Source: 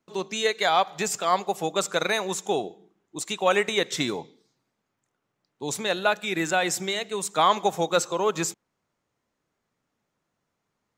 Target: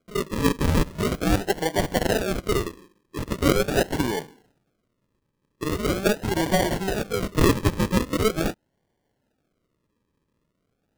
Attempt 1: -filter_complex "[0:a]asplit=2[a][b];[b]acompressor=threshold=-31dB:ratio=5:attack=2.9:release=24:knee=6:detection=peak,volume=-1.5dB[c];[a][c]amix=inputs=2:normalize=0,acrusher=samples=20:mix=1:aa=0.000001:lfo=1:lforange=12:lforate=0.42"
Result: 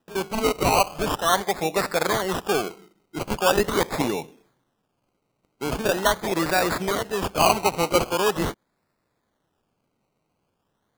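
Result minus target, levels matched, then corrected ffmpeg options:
decimation with a swept rate: distortion -15 dB
-filter_complex "[0:a]asplit=2[a][b];[b]acompressor=threshold=-31dB:ratio=5:attack=2.9:release=24:knee=6:detection=peak,volume=-1.5dB[c];[a][c]amix=inputs=2:normalize=0,acrusher=samples=48:mix=1:aa=0.000001:lfo=1:lforange=28.8:lforate=0.42"

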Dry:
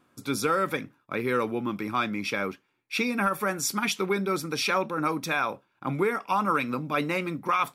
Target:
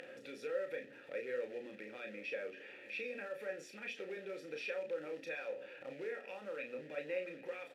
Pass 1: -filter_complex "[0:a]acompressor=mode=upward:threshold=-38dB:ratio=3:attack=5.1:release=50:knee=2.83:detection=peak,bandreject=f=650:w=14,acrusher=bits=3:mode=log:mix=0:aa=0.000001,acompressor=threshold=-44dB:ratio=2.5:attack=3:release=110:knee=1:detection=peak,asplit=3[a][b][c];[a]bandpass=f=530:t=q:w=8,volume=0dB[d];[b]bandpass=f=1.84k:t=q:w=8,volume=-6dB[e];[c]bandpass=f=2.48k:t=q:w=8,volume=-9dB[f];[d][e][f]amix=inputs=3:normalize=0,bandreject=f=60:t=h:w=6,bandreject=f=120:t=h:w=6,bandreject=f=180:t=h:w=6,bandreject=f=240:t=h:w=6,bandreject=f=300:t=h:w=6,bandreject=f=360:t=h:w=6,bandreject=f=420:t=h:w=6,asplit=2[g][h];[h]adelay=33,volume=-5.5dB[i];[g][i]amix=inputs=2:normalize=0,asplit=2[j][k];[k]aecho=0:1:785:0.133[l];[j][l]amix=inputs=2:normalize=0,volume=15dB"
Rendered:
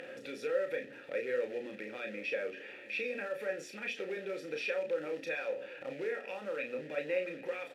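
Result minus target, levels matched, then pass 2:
compressor: peak gain reduction -6 dB
-filter_complex "[0:a]acompressor=mode=upward:threshold=-38dB:ratio=3:attack=5.1:release=50:knee=2.83:detection=peak,bandreject=f=650:w=14,acrusher=bits=3:mode=log:mix=0:aa=0.000001,acompressor=threshold=-54dB:ratio=2.5:attack=3:release=110:knee=1:detection=peak,asplit=3[a][b][c];[a]bandpass=f=530:t=q:w=8,volume=0dB[d];[b]bandpass=f=1.84k:t=q:w=8,volume=-6dB[e];[c]bandpass=f=2.48k:t=q:w=8,volume=-9dB[f];[d][e][f]amix=inputs=3:normalize=0,bandreject=f=60:t=h:w=6,bandreject=f=120:t=h:w=6,bandreject=f=180:t=h:w=6,bandreject=f=240:t=h:w=6,bandreject=f=300:t=h:w=6,bandreject=f=360:t=h:w=6,bandreject=f=420:t=h:w=6,asplit=2[g][h];[h]adelay=33,volume=-5.5dB[i];[g][i]amix=inputs=2:normalize=0,asplit=2[j][k];[k]aecho=0:1:785:0.133[l];[j][l]amix=inputs=2:normalize=0,volume=15dB"

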